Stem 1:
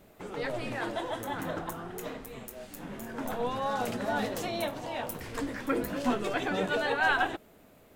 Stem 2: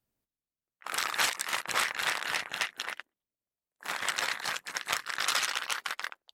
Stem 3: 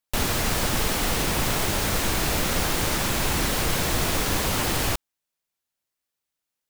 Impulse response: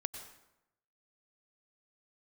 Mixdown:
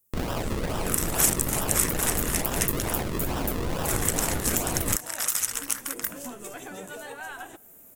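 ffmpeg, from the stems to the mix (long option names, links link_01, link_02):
-filter_complex "[0:a]acompressor=threshold=-35dB:ratio=3,adelay=200,volume=-4.5dB,asplit=2[link_01][link_02];[link_02]volume=-18.5dB[link_03];[1:a]acontrast=54,volume=-9dB[link_04];[2:a]acrusher=samples=40:mix=1:aa=0.000001:lfo=1:lforange=40:lforate=2.3,volume=-5dB[link_05];[link_01][link_04]amix=inputs=2:normalize=0,aexciter=amount=12:drive=3.5:freq=6200,alimiter=limit=-5dB:level=0:latency=1:release=426,volume=0dB[link_06];[3:a]atrim=start_sample=2205[link_07];[link_03][link_07]afir=irnorm=-1:irlink=0[link_08];[link_05][link_06][link_08]amix=inputs=3:normalize=0"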